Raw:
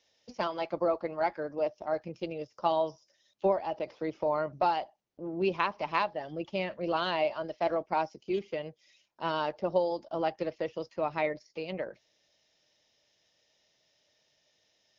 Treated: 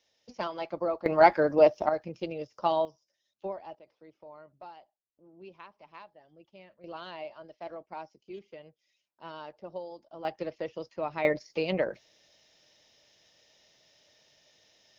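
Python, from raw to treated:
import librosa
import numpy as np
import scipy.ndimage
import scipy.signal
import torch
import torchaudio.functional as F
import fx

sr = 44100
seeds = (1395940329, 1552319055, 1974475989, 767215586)

y = fx.gain(x, sr, db=fx.steps((0.0, -2.0), (1.06, 11.0), (1.89, 1.0), (2.85, -10.0), (3.75, -20.0), (6.84, -12.0), (10.25, -2.0), (11.25, 7.5)))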